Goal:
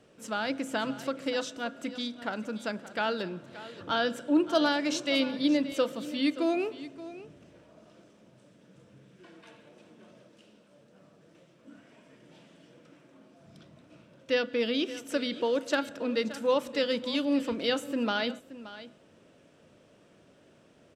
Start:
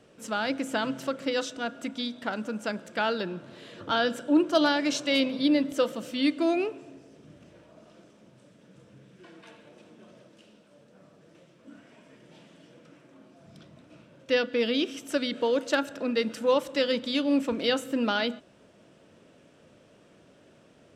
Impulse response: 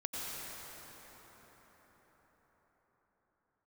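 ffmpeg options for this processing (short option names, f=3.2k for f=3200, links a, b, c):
-af "aecho=1:1:575:0.168,volume=-2.5dB"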